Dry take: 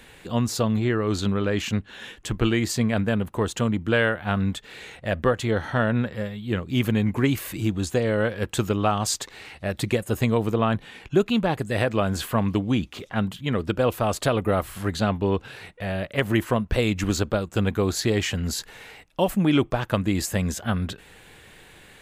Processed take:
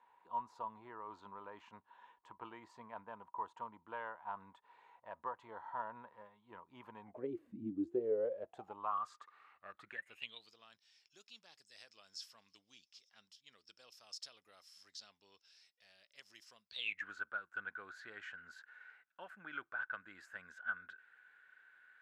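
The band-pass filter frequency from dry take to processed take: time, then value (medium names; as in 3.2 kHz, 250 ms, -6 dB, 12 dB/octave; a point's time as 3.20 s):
band-pass filter, Q 17
7.01 s 960 Hz
7.52 s 220 Hz
9.01 s 1.2 kHz
9.79 s 1.2 kHz
10.55 s 5.3 kHz
16.65 s 5.3 kHz
17.06 s 1.5 kHz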